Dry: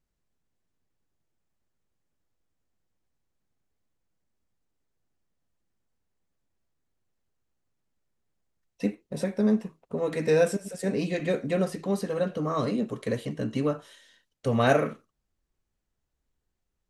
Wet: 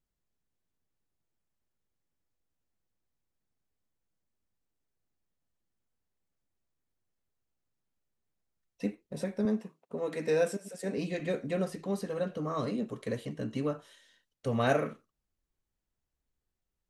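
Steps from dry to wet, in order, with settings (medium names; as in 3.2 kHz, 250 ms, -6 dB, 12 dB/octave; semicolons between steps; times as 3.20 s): 9.45–10.98 s: high-pass 180 Hz 12 dB/octave; trim -5.5 dB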